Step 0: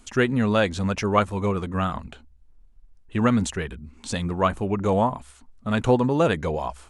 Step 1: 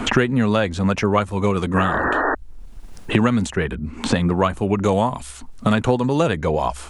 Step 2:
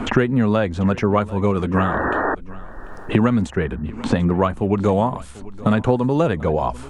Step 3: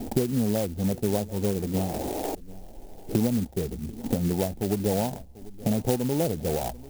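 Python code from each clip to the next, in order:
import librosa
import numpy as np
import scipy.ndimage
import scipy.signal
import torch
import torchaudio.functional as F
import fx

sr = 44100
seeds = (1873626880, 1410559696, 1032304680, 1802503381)

y1 = fx.spec_paint(x, sr, seeds[0], shape='noise', start_s=1.76, length_s=0.59, low_hz=250.0, high_hz=1900.0, level_db=-29.0)
y1 = fx.band_squash(y1, sr, depth_pct=100)
y1 = y1 * librosa.db_to_amplitude(3.0)
y2 = fx.high_shelf(y1, sr, hz=2300.0, db=-11.0)
y2 = fx.echo_feedback(y2, sr, ms=741, feedback_pct=26, wet_db=-19.5)
y2 = y2 * librosa.db_to_amplitude(1.0)
y3 = scipy.signal.sosfilt(scipy.signal.ellip(4, 1.0, 40, 820.0, 'lowpass', fs=sr, output='sos'), y2)
y3 = fx.clock_jitter(y3, sr, seeds[1], jitter_ms=0.096)
y3 = y3 * librosa.db_to_amplitude(-7.0)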